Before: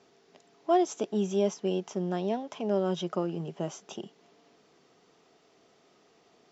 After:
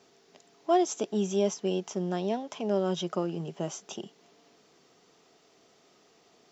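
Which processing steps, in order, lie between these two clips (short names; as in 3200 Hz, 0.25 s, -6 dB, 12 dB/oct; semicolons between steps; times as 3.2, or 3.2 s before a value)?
high shelf 4800 Hz +8 dB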